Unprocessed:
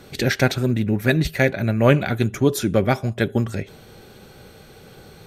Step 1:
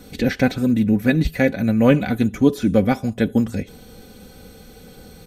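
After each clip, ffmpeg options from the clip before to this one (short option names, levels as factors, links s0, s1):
-filter_complex "[0:a]equalizer=f=1400:w=0.32:g=-9,aecho=1:1:4:0.63,acrossover=split=3600[s0][s1];[s1]acompressor=threshold=0.00501:ratio=4:attack=1:release=60[s2];[s0][s2]amix=inputs=2:normalize=0,volume=1.68"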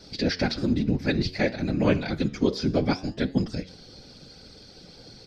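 -af "afftfilt=real='hypot(re,im)*cos(2*PI*random(0))':imag='hypot(re,im)*sin(2*PI*random(1))':win_size=512:overlap=0.75,flanger=delay=7.2:depth=8.9:regen=89:speed=0.6:shape=triangular,lowpass=f=4900:t=q:w=10,volume=1.5"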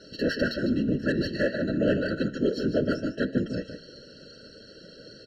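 -filter_complex "[0:a]asplit=2[s0][s1];[s1]highpass=f=720:p=1,volume=8.91,asoftclip=type=tanh:threshold=0.376[s2];[s0][s2]amix=inputs=2:normalize=0,lowpass=f=1600:p=1,volume=0.501,asplit=2[s3][s4];[s4]adelay=151.6,volume=0.398,highshelf=f=4000:g=-3.41[s5];[s3][s5]amix=inputs=2:normalize=0,afftfilt=real='re*eq(mod(floor(b*sr/1024/650),2),0)':imag='im*eq(mod(floor(b*sr/1024/650),2),0)':win_size=1024:overlap=0.75,volume=0.596"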